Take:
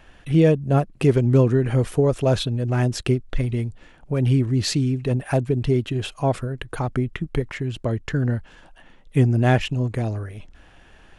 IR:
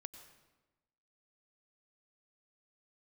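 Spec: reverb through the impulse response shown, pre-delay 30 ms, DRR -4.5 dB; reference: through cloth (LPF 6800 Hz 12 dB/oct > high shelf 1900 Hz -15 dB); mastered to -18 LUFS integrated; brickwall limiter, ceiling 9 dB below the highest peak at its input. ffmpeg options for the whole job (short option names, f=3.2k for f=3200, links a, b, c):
-filter_complex "[0:a]alimiter=limit=-14.5dB:level=0:latency=1,asplit=2[a][b];[1:a]atrim=start_sample=2205,adelay=30[c];[b][c]afir=irnorm=-1:irlink=0,volume=9.5dB[d];[a][d]amix=inputs=2:normalize=0,lowpass=6.8k,highshelf=f=1.9k:g=-15,volume=2dB"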